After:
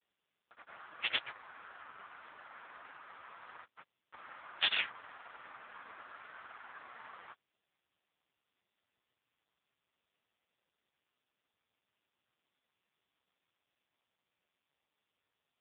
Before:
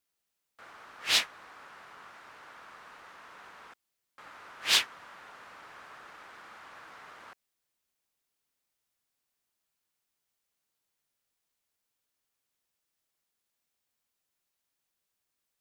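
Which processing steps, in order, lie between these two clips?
low-shelf EQ 77 Hz −9 dB
granular cloud 100 ms, grains 20 per second
level +4 dB
AMR narrowband 4.75 kbit/s 8,000 Hz

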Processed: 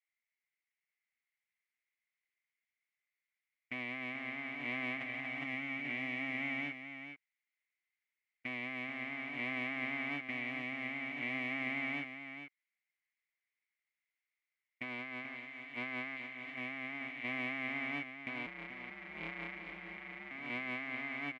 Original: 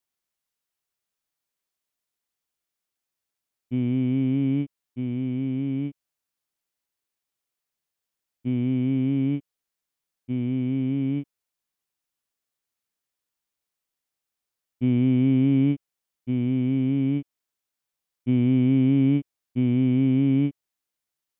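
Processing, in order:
0:15.35–0:16.41: spectral envelope flattened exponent 0.6
leveller curve on the samples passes 3
resonant band-pass 2,100 Hz, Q 11
single-tap delay 811 ms −3.5 dB
compressor whose output falls as the input rises −54 dBFS, ratio −1
0:18.46–0:20.31: ring modulation 79 Hz
single-tap delay 435 ms −9 dB
level +11.5 dB

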